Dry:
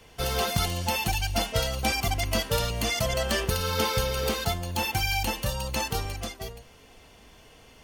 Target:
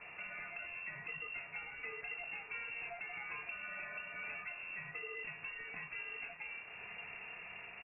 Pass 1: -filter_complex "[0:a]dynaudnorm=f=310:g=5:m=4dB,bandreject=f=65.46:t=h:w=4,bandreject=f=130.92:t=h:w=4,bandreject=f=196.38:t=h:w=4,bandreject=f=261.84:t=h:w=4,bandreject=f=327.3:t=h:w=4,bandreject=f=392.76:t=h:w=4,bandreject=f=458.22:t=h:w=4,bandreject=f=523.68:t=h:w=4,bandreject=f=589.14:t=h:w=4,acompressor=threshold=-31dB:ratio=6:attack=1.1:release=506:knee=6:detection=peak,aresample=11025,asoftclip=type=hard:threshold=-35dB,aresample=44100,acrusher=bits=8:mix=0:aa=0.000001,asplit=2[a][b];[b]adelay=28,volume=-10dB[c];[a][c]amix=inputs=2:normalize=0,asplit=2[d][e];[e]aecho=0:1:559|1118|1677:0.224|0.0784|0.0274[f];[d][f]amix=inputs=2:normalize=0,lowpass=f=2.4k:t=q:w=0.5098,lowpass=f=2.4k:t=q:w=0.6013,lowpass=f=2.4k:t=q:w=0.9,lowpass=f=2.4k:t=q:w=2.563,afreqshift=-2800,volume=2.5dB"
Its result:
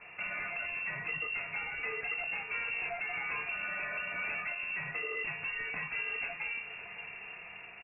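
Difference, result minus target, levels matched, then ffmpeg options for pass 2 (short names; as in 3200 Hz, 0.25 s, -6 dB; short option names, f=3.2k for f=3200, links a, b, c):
compressor: peak gain reduction -10 dB
-filter_complex "[0:a]dynaudnorm=f=310:g=5:m=4dB,bandreject=f=65.46:t=h:w=4,bandreject=f=130.92:t=h:w=4,bandreject=f=196.38:t=h:w=4,bandreject=f=261.84:t=h:w=4,bandreject=f=327.3:t=h:w=4,bandreject=f=392.76:t=h:w=4,bandreject=f=458.22:t=h:w=4,bandreject=f=523.68:t=h:w=4,bandreject=f=589.14:t=h:w=4,acompressor=threshold=-43dB:ratio=6:attack=1.1:release=506:knee=6:detection=peak,aresample=11025,asoftclip=type=hard:threshold=-35dB,aresample=44100,acrusher=bits=8:mix=0:aa=0.000001,asplit=2[a][b];[b]adelay=28,volume=-10dB[c];[a][c]amix=inputs=2:normalize=0,asplit=2[d][e];[e]aecho=0:1:559|1118|1677:0.224|0.0784|0.0274[f];[d][f]amix=inputs=2:normalize=0,lowpass=f=2.4k:t=q:w=0.5098,lowpass=f=2.4k:t=q:w=0.6013,lowpass=f=2.4k:t=q:w=0.9,lowpass=f=2.4k:t=q:w=2.563,afreqshift=-2800,volume=2.5dB"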